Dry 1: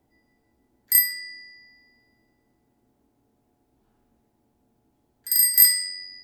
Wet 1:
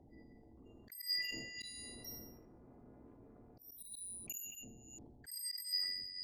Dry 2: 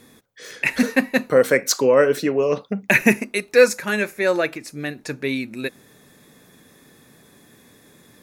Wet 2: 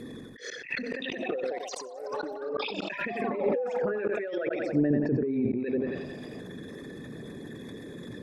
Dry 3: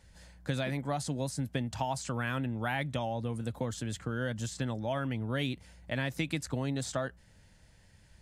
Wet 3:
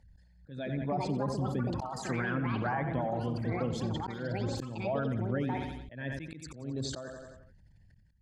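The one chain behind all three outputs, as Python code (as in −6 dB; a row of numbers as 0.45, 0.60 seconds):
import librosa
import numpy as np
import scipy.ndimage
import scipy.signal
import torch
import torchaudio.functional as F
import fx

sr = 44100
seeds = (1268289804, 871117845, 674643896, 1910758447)

y = fx.envelope_sharpen(x, sr, power=2.0)
y = fx.echo_feedback(y, sr, ms=89, feedback_pct=50, wet_db=-10.0)
y = fx.echo_pitch(y, sr, ms=573, semitones=6, count=3, db_per_echo=-6.0)
y = fx.over_compress(y, sr, threshold_db=-30.0, ratio=-1.0)
y = fx.auto_swell(y, sr, attack_ms=286.0)
y = fx.env_lowpass_down(y, sr, base_hz=630.0, full_db=-24.0)
y = fx.peak_eq(y, sr, hz=4500.0, db=3.5, octaves=0.37)
y = fx.sustainer(y, sr, db_per_s=41.0)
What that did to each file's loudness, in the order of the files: −24.0, −11.5, +0.5 LU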